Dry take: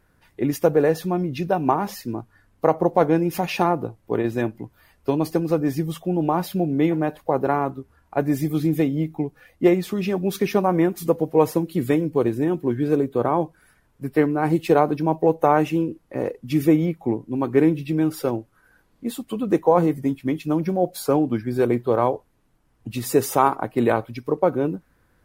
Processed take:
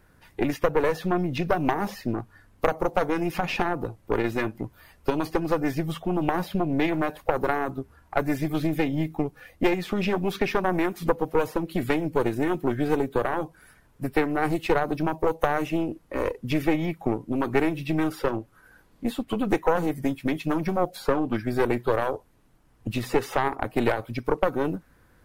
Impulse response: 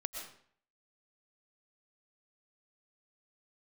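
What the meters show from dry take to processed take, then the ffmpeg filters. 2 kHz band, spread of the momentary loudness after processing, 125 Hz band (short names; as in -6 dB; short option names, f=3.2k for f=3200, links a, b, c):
+2.5 dB, 7 LU, -5.0 dB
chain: -filter_complex "[0:a]acrossover=split=710|3800[a][b][c];[a]acompressor=threshold=-27dB:ratio=4[d];[b]acompressor=threshold=-31dB:ratio=4[e];[c]acompressor=threshold=-53dB:ratio=4[f];[d][e][f]amix=inputs=3:normalize=0,aeval=exprs='0.282*(cos(1*acos(clip(val(0)/0.282,-1,1)))-cos(1*PI/2))+0.0708*(cos(4*acos(clip(val(0)/0.282,-1,1)))-cos(4*PI/2))':c=same,volume=3.5dB"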